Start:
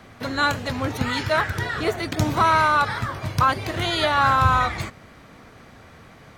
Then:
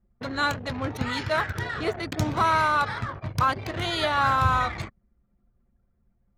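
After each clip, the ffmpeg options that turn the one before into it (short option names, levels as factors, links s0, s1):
-af "anlmdn=25.1,volume=0.631"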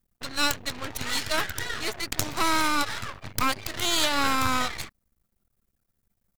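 -af "crystalizer=i=9.5:c=0,aeval=exprs='max(val(0),0)':c=same,volume=0.596"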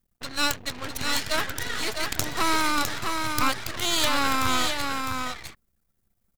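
-af "aecho=1:1:656:0.562"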